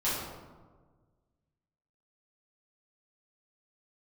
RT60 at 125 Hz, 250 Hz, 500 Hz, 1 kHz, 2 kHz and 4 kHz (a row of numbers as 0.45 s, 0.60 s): 2.0 s, 1.7 s, 1.6 s, 1.4 s, 0.95 s, 0.70 s